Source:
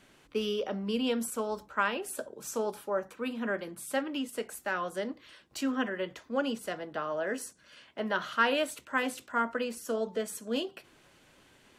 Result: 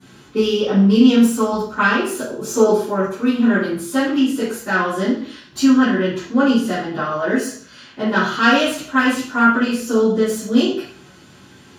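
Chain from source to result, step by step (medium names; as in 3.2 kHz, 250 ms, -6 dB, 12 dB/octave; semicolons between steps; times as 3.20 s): self-modulated delay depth 0.062 ms; 2.25–2.76 s: peaking EQ 490 Hz +6 dB 1.2 oct; reverberation RT60 0.50 s, pre-delay 3 ms, DRR -18 dB; trim -3.5 dB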